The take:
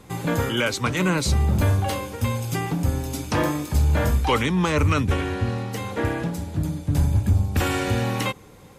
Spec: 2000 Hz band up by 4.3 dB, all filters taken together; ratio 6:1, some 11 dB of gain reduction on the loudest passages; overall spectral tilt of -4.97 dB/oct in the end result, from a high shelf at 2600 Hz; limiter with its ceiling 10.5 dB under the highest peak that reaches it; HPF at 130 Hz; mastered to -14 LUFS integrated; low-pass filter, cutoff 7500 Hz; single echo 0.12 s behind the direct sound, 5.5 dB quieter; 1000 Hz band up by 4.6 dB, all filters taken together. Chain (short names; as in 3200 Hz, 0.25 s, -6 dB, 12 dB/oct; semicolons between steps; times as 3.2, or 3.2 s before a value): HPF 130 Hz; LPF 7500 Hz; bell 1000 Hz +5 dB; bell 2000 Hz +6.5 dB; high shelf 2600 Hz -6 dB; compressor 6:1, threshold -26 dBFS; limiter -24 dBFS; echo 0.12 s -5.5 dB; gain +18 dB